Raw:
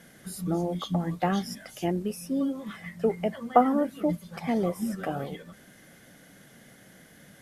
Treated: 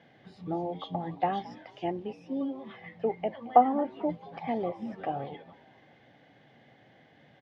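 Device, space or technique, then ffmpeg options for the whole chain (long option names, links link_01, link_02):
frequency-shifting delay pedal into a guitar cabinet: -filter_complex "[0:a]asplit=4[link_01][link_02][link_03][link_04];[link_02]adelay=221,afreqshift=110,volume=-22dB[link_05];[link_03]adelay=442,afreqshift=220,volume=-29.3dB[link_06];[link_04]adelay=663,afreqshift=330,volume=-36.7dB[link_07];[link_01][link_05][link_06][link_07]amix=inputs=4:normalize=0,highpass=92,equalizer=frequency=120:width_type=q:width=4:gain=4,equalizer=frequency=190:width_type=q:width=4:gain=-9,equalizer=frequency=800:width_type=q:width=4:gain=9,equalizer=frequency=1400:width_type=q:width=4:gain=-9,lowpass=frequency=3600:width=0.5412,lowpass=frequency=3600:width=1.3066,volume=-4dB"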